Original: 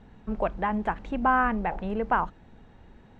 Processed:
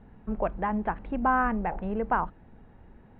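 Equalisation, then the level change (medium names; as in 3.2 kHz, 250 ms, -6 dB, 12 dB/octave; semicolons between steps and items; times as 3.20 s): low-pass 3.5 kHz 12 dB/octave; distance through air 360 m; 0.0 dB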